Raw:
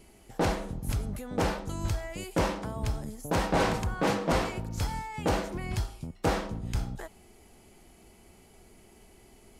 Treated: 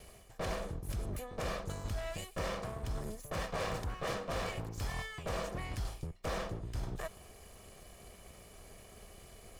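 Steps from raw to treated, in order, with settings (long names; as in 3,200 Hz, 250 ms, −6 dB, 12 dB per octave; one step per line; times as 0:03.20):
lower of the sound and its delayed copy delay 1.7 ms
reversed playback
downward compressor 4 to 1, threshold −40 dBFS, peak gain reduction 14.5 dB
reversed playback
level +3.5 dB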